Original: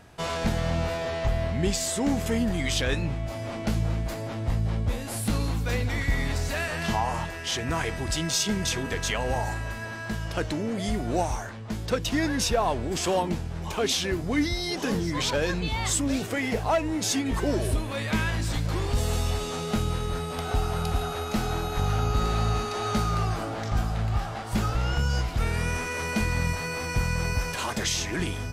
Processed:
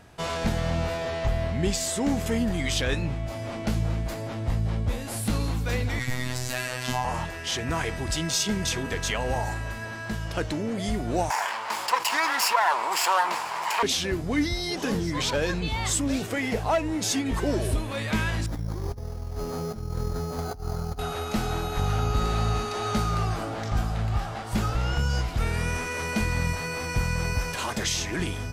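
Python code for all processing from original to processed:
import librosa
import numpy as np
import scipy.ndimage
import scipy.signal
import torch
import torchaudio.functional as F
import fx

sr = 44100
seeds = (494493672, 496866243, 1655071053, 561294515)

y = fx.chain(x, sr, fx.high_shelf(hz=3500.0, db=7.5),
    fx.robotise(hz=126.0), at=(5.99, 7.05))
y = fx.chain(y, sr, fx.lower_of_two(delay_ms=0.4),
    fx.highpass_res(hz=970.0, q=5.0),
    fx.env_flatten(amount_pct=50), at=(11.3, 13.83))
y = fx.chain(y, sr, fx.over_compress(threshold_db=-29.0, ratio=-0.5),
    fx.spacing_loss(db_at_10k=44),
    fx.resample_bad(factor=8, down='filtered', up='hold'), at=(18.46, 20.99))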